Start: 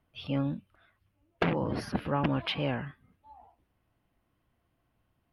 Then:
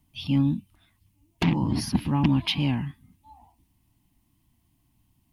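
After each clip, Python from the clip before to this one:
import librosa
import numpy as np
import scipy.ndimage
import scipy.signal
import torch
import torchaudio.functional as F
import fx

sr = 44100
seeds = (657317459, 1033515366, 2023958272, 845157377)

y = fx.curve_eq(x, sr, hz=(290.0, 510.0, 930.0, 1400.0, 2000.0, 7200.0), db=(0, -22, -4, -18, -7, 7))
y = y * 10.0 ** (8.5 / 20.0)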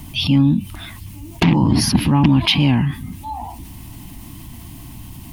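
y = fx.env_flatten(x, sr, amount_pct=50)
y = y * 10.0 ** (7.0 / 20.0)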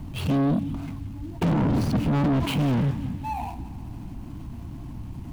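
y = scipy.signal.medfilt(x, 25)
y = fx.echo_feedback(y, sr, ms=177, feedback_pct=55, wet_db=-17.5)
y = 10.0 ** (-19.0 / 20.0) * np.tanh(y / 10.0 ** (-19.0 / 20.0))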